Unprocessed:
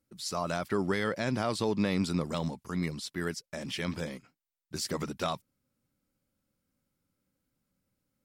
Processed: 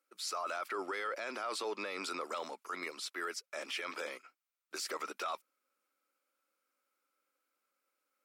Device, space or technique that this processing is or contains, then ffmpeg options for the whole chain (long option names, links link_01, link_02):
laptop speaker: -af "highpass=200,highpass=frequency=380:width=0.5412,highpass=frequency=380:width=1.3066,equalizer=frequency=1300:width_type=o:width=0.44:gain=11,equalizer=frequency=2400:width_type=o:width=0.39:gain=6.5,alimiter=level_in=4dB:limit=-24dB:level=0:latency=1:release=11,volume=-4dB,volume=-1.5dB"